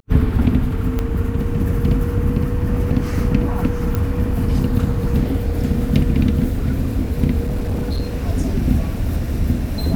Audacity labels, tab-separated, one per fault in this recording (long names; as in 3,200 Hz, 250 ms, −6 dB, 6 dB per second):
0.990000	0.990000	click −9 dBFS
3.950000	3.950000	click −9 dBFS
7.430000	8.030000	clipping −17 dBFS